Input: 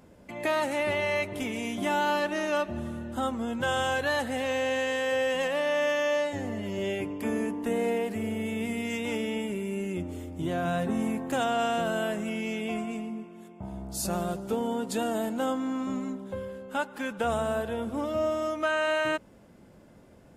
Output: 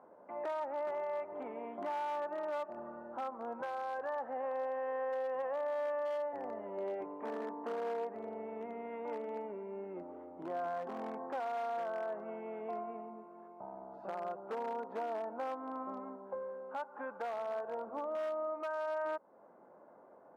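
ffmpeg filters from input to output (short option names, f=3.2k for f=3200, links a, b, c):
-filter_complex "[0:a]asplit=2[a][b];[b]acompressor=threshold=-44dB:ratio=4,volume=-1dB[c];[a][c]amix=inputs=2:normalize=0,lowpass=f=1.1k:w=0.5412,lowpass=f=1.1k:w=1.3066,asoftclip=type=hard:threshold=-22.5dB,highpass=740,alimiter=level_in=8dB:limit=-24dB:level=0:latency=1:release=215,volume=-8dB,volume=1dB"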